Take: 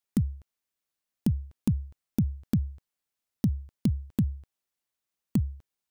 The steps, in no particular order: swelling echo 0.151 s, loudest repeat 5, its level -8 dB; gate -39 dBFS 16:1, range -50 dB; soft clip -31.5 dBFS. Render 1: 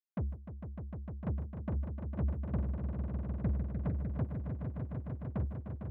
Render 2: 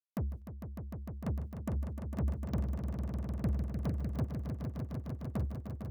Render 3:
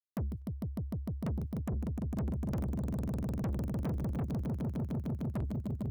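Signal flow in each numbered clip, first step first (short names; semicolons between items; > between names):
soft clip > gate > swelling echo; gate > soft clip > swelling echo; gate > swelling echo > soft clip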